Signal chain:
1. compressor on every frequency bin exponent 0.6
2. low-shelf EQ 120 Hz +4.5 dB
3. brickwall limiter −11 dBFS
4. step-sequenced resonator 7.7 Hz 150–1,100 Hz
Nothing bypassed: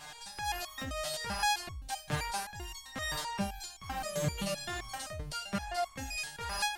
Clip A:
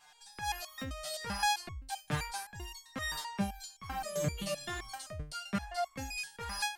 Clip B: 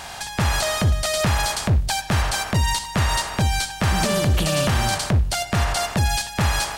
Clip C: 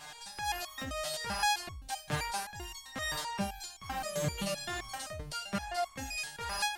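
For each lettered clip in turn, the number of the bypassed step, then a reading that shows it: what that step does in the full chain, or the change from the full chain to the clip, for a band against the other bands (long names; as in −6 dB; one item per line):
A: 1, 250 Hz band +2.0 dB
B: 4, change in momentary loudness spread −6 LU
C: 2, 125 Hz band −1.5 dB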